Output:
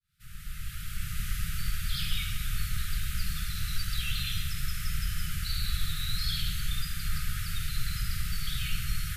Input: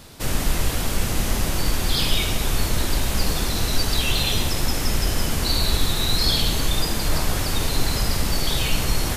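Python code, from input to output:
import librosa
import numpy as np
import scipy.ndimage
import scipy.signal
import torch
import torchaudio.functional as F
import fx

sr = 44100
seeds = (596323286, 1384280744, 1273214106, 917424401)

y = fx.fade_in_head(x, sr, length_s=1.33)
y = fx.brickwall_bandstop(y, sr, low_hz=190.0, high_hz=1200.0)
y = fx.peak_eq(y, sr, hz=6000.0, db=-6.5, octaves=1.2)
y = y * librosa.db_to_amplitude(-8.5)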